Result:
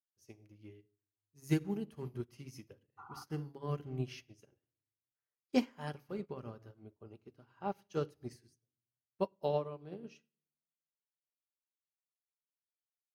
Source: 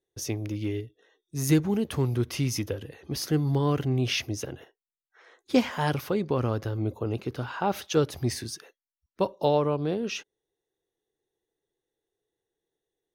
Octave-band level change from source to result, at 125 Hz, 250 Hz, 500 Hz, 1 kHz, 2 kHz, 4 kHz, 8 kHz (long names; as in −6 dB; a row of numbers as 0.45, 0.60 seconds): −15.0, −12.0, −12.0, −13.0, −16.0, −18.5, −22.5 decibels